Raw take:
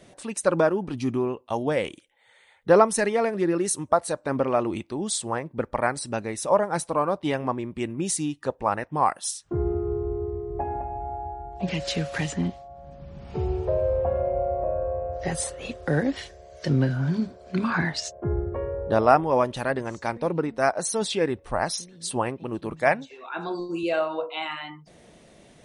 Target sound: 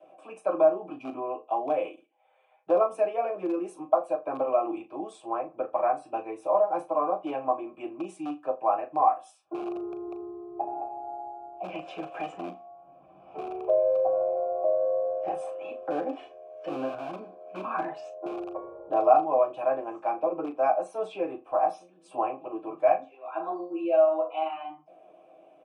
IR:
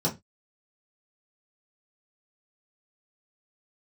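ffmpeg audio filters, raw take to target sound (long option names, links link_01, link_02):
-filter_complex "[1:a]atrim=start_sample=2205,atrim=end_sample=3969,asetrate=88200,aresample=44100[link_01];[0:a][link_01]afir=irnorm=-1:irlink=0,acrossover=split=160|1200|5400[link_02][link_03][link_04][link_05];[link_02]aeval=exprs='(mod(16.8*val(0)+1,2)-1)/16.8':channel_layout=same[link_06];[link_06][link_03][link_04][link_05]amix=inputs=4:normalize=0,acrossover=split=260|3000[link_07][link_08][link_09];[link_08]acompressor=threshold=-14dB:ratio=2[link_10];[link_07][link_10][link_09]amix=inputs=3:normalize=0,asplit=3[link_11][link_12][link_13];[link_11]bandpass=frequency=730:width_type=q:width=8,volume=0dB[link_14];[link_12]bandpass=frequency=1090:width_type=q:width=8,volume=-6dB[link_15];[link_13]bandpass=frequency=2440:width_type=q:width=8,volume=-9dB[link_16];[link_14][link_15][link_16]amix=inputs=3:normalize=0,asplit=2[link_17][link_18];[link_18]adelay=38,volume=-10.5dB[link_19];[link_17][link_19]amix=inputs=2:normalize=0,asplit=2[link_20][link_21];[link_21]adelay=81,lowpass=frequency=2000:poles=1,volume=-21dB,asplit=2[link_22][link_23];[link_23]adelay=81,lowpass=frequency=2000:poles=1,volume=0.24[link_24];[link_20][link_22][link_24]amix=inputs=3:normalize=0"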